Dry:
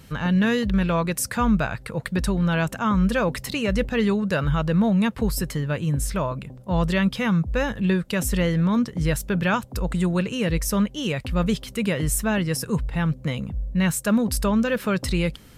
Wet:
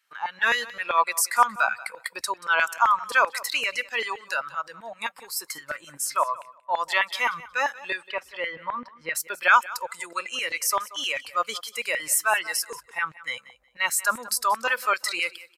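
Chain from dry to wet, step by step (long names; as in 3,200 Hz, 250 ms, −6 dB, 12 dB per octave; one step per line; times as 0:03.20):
noise gate −39 dBFS, range −10 dB
noise reduction from a noise print of the clip's start 14 dB
0:04.06–0:05.86: downward compressor, threshold −25 dBFS, peak gain reduction 7.5 dB
auto-filter high-pass saw down 7.7 Hz 790–1,900 Hz
0:08.07–0:09.15: high-frequency loss of the air 390 metres
repeating echo 182 ms, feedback 18%, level −19 dB
level +3 dB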